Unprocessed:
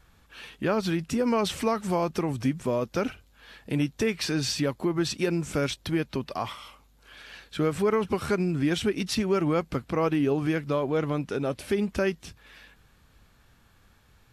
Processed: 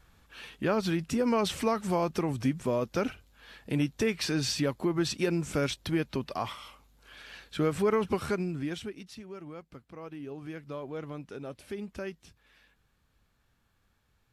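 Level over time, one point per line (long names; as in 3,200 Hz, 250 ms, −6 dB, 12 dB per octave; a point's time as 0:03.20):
0:08.15 −2 dB
0:08.78 −10.5 dB
0:09.12 −19 dB
0:09.98 −19 dB
0:10.79 −12 dB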